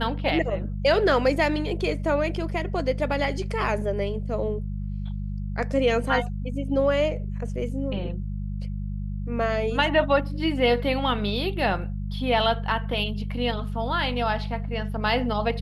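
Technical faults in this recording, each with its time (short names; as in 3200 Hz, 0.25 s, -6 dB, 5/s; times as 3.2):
hum 50 Hz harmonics 4 -30 dBFS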